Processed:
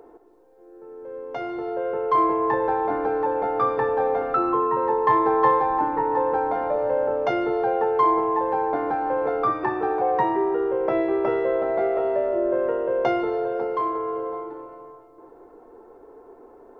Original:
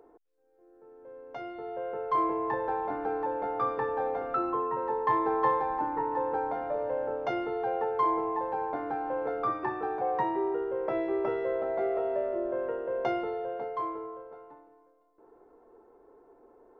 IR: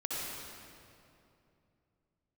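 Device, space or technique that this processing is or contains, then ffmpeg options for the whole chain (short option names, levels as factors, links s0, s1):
ducked reverb: -filter_complex "[0:a]asplit=3[s0][s1][s2];[1:a]atrim=start_sample=2205[s3];[s1][s3]afir=irnorm=-1:irlink=0[s4];[s2]apad=whole_len=740813[s5];[s4][s5]sidechaincompress=threshold=0.0158:ratio=8:attack=16:release=621,volume=0.473[s6];[s0][s6]amix=inputs=2:normalize=0,volume=2.11"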